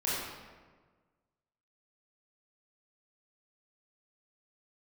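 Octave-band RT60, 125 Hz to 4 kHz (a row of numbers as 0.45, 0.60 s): 1.7, 1.6, 1.5, 1.4, 1.2, 0.90 s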